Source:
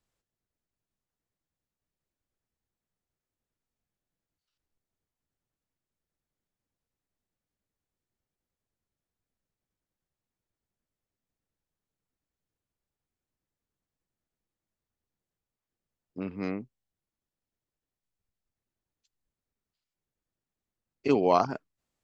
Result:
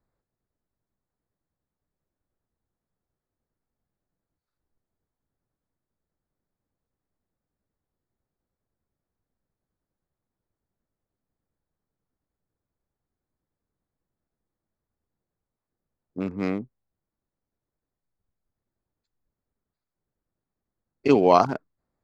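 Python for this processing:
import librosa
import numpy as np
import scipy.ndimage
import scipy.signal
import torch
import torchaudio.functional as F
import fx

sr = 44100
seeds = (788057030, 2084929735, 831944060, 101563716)

y = fx.wiener(x, sr, points=15)
y = y * librosa.db_to_amplitude(6.0)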